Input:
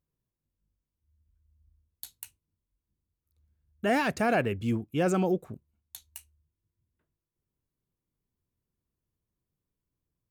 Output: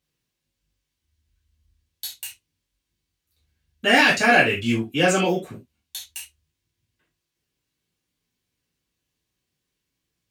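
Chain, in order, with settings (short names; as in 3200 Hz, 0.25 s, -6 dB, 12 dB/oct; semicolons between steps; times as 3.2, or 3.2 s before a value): weighting filter D; non-linear reverb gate 0.1 s falling, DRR -6.5 dB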